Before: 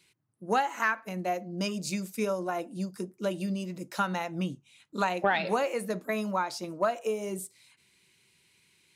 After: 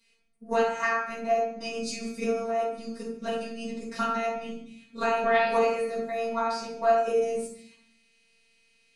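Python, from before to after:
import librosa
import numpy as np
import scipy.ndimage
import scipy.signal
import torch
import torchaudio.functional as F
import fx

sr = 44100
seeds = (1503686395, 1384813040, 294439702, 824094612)

y = scipy.signal.sosfilt(scipy.signal.butter(4, 9100.0, 'lowpass', fs=sr, output='sos'), x)
y = fx.level_steps(y, sr, step_db=9)
y = fx.robotise(y, sr, hz=228.0)
y = y + 10.0 ** (-18.5 / 20.0) * np.pad(y, (int(146 * sr / 1000.0), 0))[:len(y)]
y = fx.room_shoebox(y, sr, seeds[0], volume_m3=81.0, walls='mixed', distance_m=1.8)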